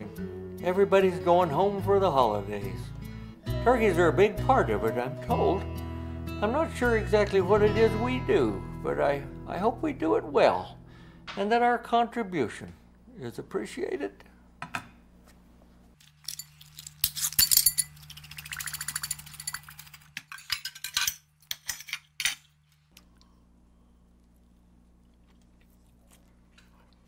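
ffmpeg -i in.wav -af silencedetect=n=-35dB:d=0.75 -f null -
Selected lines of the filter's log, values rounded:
silence_start: 14.79
silence_end: 16.28 | silence_duration: 1.49
silence_start: 22.97
silence_end: 27.08 | silence_duration: 4.11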